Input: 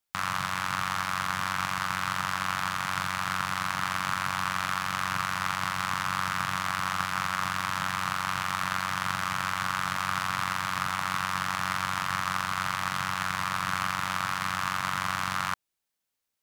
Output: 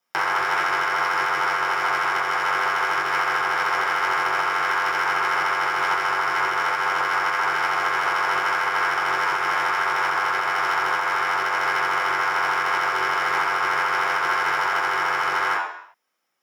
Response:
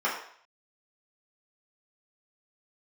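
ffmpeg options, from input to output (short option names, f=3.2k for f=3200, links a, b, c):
-filter_complex "[0:a]aeval=exprs='val(0)*sin(2*PI*240*n/s)':c=same[a];[1:a]atrim=start_sample=2205,asetrate=43659,aresample=44100[b];[a][b]afir=irnorm=-1:irlink=0,alimiter=limit=-17.5dB:level=0:latency=1:release=295,volume=5dB"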